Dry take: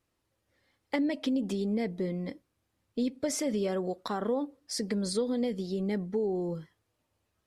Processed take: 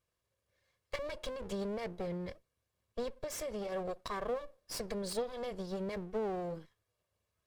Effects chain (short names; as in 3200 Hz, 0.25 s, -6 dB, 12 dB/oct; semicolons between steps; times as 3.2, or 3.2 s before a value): minimum comb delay 1.8 ms; 3.17–3.72 compressor, threshold -32 dBFS, peak gain reduction 5 dB; gain -4.5 dB